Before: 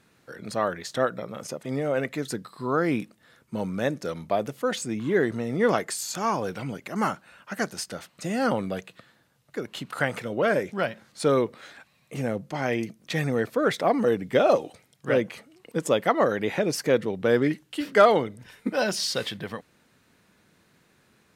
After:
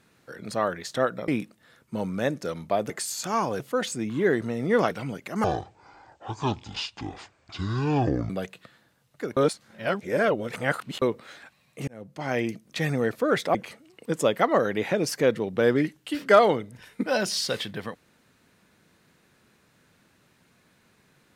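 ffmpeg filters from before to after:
ffmpeg -i in.wav -filter_complex "[0:a]asplit=11[link_01][link_02][link_03][link_04][link_05][link_06][link_07][link_08][link_09][link_10][link_11];[link_01]atrim=end=1.282[link_12];[link_02]atrim=start=2.878:end=4.502[link_13];[link_03]atrim=start=5.808:end=6.512[link_14];[link_04]atrim=start=4.498:end=5.812[link_15];[link_05]atrim=start=6.508:end=7.044[link_16];[link_06]atrim=start=7.04:end=8.64,asetpts=PTS-STARTPTS,asetrate=24696,aresample=44100[link_17];[link_07]atrim=start=8.636:end=9.712[link_18];[link_08]atrim=start=9.708:end=11.362,asetpts=PTS-STARTPTS,areverse[link_19];[link_09]atrim=start=11.358:end=12.22,asetpts=PTS-STARTPTS,afade=type=out:start_time=0.858:duration=0.004:curve=hsin[link_20];[link_10]atrim=start=12.22:end=13.892,asetpts=PTS-STARTPTS,afade=type=in:duration=0.48[link_21];[link_11]atrim=start=15.208[link_22];[link_12][link_13]acrossfade=duration=0.004:curve1=hsin:curve2=hsin[link_23];[link_23][link_14]acrossfade=duration=0.004:curve1=hsin:curve2=hsin[link_24];[link_24][link_15]acrossfade=duration=0.004:curve1=hsin:curve2=hsin[link_25];[link_25][link_16]acrossfade=duration=0.004:curve1=hsin:curve2=hsin[link_26];[link_26][link_17]acrossfade=duration=0.004:curve1=hsin:curve2=hsin[link_27];[link_27][link_18]acrossfade=duration=0.004:curve1=hsin:curve2=hsin[link_28];[link_28][link_19]acrossfade=duration=0.004:curve1=hsin:curve2=hsin[link_29];[link_20][link_21]concat=n=2:v=0:a=1[link_30];[link_29][link_30]acrossfade=duration=0.004:curve1=hsin:curve2=hsin[link_31];[link_31][link_22]acrossfade=duration=0.004:curve1=hsin:curve2=hsin" out.wav

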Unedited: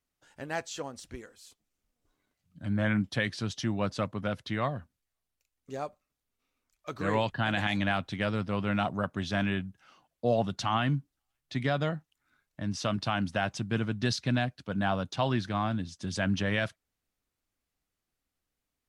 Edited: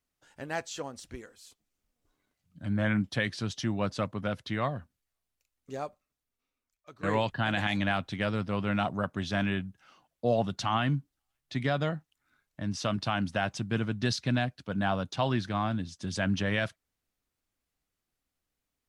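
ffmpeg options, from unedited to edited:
ffmpeg -i in.wav -filter_complex "[0:a]asplit=2[link_01][link_02];[link_01]atrim=end=7.03,asetpts=PTS-STARTPTS,afade=type=out:start_time=5.77:duration=1.26:silence=0.158489[link_03];[link_02]atrim=start=7.03,asetpts=PTS-STARTPTS,afade=type=in:duration=0.004:curve=hsin:silence=0.158489[link_04];[link_03][link_04]concat=n=2:v=0:a=1" out.wav

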